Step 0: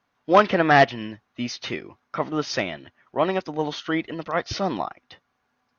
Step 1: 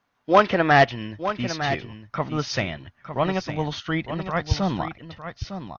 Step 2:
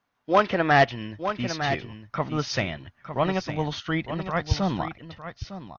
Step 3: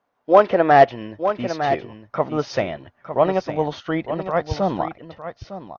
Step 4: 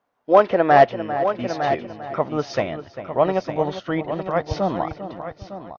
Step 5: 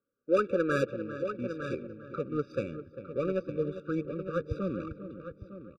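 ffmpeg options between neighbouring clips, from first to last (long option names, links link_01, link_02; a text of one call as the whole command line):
ffmpeg -i in.wav -af "aecho=1:1:906:0.316,asubboost=boost=8:cutoff=130" out.wav
ffmpeg -i in.wav -af "dynaudnorm=framelen=110:gausssize=11:maxgain=3dB,volume=-4dB" out.wav
ffmpeg -i in.wav -af "equalizer=frequency=550:width_type=o:width=2.3:gain=14.5,volume=-5dB" out.wav
ffmpeg -i in.wav -filter_complex "[0:a]asplit=2[link_01][link_02];[link_02]adelay=398,lowpass=frequency=2100:poles=1,volume=-11dB,asplit=2[link_03][link_04];[link_04]adelay=398,lowpass=frequency=2100:poles=1,volume=0.29,asplit=2[link_05][link_06];[link_06]adelay=398,lowpass=frequency=2100:poles=1,volume=0.29[link_07];[link_01][link_03][link_05][link_07]amix=inputs=4:normalize=0,volume=-1dB" out.wav
ffmpeg -i in.wav -filter_complex "[0:a]asplit=2[link_01][link_02];[link_02]adelay=179,lowpass=frequency=4200:poles=1,volume=-20dB,asplit=2[link_03][link_04];[link_04]adelay=179,lowpass=frequency=4200:poles=1,volume=0.49,asplit=2[link_05][link_06];[link_06]adelay=179,lowpass=frequency=4200:poles=1,volume=0.49,asplit=2[link_07][link_08];[link_08]adelay=179,lowpass=frequency=4200:poles=1,volume=0.49[link_09];[link_01][link_03][link_05][link_07][link_09]amix=inputs=5:normalize=0,adynamicsmooth=sensitivity=1.5:basefreq=1500,afftfilt=real='re*eq(mod(floor(b*sr/1024/570),2),0)':imag='im*eq(mod(floor(b*sr/1024/570),2),0)':win_size=1024:overlap=0.75,volume=-7dB" out.wav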